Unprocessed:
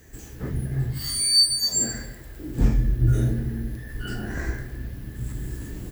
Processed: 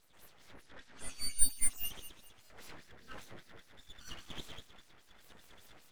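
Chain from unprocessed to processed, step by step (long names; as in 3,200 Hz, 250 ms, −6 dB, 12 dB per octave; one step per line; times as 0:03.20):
delay with a high-pass on its return 107 ms, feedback 70%, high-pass 4,200 Hz, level −20 dB
auto-filter band-pass sine 5 Hz 920–5,400 Hz
full-wave rectification
0:00.62–0:01.39: low-pass filter 8,000 Hz 12 dB per octave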